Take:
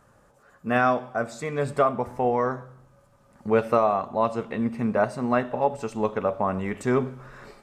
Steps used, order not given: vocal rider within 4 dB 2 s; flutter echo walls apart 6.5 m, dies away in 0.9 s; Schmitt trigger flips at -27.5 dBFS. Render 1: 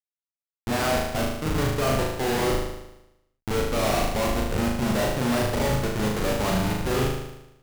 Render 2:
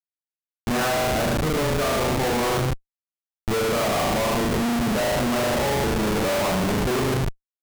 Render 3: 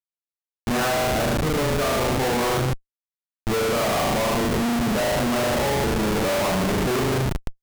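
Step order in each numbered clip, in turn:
vocal rider > Schmitt trigger > flutter echo; vocal rider > flutter echo > Schmitt trigger; flutter echo > vocal rider > Schmitt trigger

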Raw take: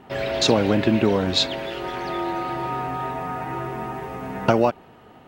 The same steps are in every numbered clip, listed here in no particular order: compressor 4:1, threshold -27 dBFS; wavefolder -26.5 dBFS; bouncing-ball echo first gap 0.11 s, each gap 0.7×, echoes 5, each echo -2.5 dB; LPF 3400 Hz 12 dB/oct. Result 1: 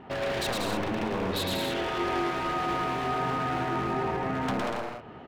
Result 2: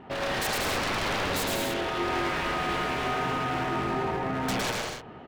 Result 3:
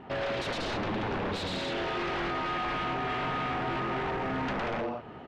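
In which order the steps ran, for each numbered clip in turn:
LPF > compressor > wavefolder > bouncing-ball echo; LPF > wavefolder > compressor > bouncing-ball echo; compressor > bouncing-ball echo > wavefolder > LPF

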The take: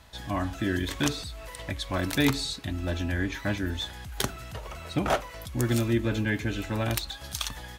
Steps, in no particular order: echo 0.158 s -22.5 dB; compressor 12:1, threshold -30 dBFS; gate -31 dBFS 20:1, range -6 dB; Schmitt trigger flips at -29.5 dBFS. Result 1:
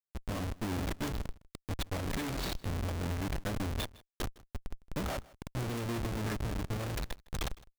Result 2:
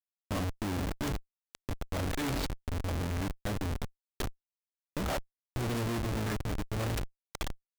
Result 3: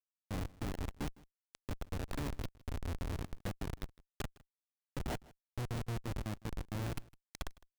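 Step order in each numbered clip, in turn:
Schmitt trigger > gate > echo > compressor; echo > gate > Schmitt trigger > compressor; gate > compressor > Schmitt trigger > echo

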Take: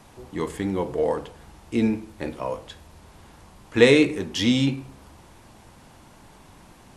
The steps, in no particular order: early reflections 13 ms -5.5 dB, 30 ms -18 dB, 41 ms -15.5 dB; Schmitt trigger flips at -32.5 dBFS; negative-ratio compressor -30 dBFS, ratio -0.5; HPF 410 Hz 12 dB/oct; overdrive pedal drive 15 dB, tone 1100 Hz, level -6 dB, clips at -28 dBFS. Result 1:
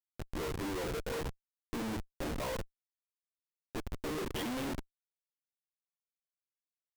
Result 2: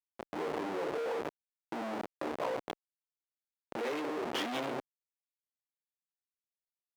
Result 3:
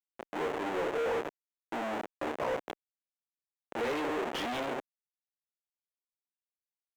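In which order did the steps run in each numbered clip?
early reflections > overdrive pedal > HPF > negative-ratio compressor > Schmitt trigger; early reflections > Schmitt trigger > overdrive pedal > negative-ratio compressor > HPF; early reflections > Schmitt trigger > HPF > overdrive pedal > negative-ratio compressor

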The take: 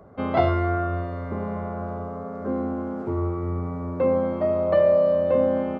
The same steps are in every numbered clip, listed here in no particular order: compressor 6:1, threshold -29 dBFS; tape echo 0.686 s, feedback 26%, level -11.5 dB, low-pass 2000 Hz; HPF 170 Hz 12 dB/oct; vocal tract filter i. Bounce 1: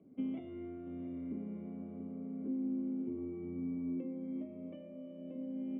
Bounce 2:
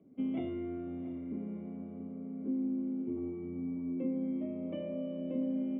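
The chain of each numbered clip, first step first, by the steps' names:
HPF > compressor > vocal tract filter > tape echo; vocal tract filter > compressor > tape echo > HPF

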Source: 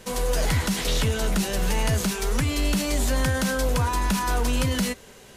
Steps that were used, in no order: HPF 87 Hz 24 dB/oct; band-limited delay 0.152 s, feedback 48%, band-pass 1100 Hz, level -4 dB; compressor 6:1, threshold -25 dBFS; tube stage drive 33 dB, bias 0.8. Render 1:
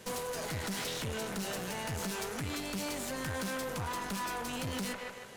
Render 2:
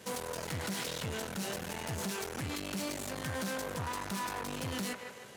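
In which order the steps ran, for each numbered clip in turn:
band-limited delay > compressor > HPF > tube stage; compressor > band-limited delay > tube stage > HPF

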